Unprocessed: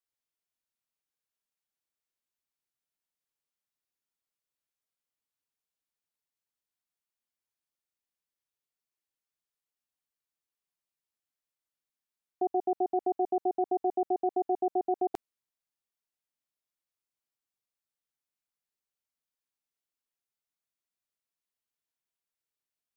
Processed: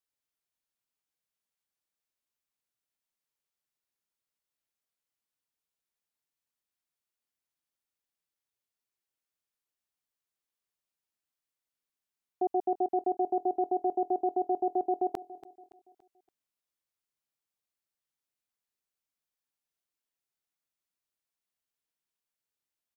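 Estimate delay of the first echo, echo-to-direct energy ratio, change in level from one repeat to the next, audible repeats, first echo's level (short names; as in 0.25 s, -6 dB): 0.284 s, -16.0 dB, -7.5 dB, 3, -17.0 dB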